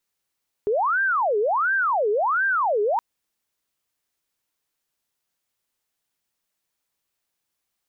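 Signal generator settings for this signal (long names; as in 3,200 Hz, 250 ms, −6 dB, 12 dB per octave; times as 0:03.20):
siren wail 409–1,590 Hz 1.4 per second sine −18.5 dBFS 2.32 s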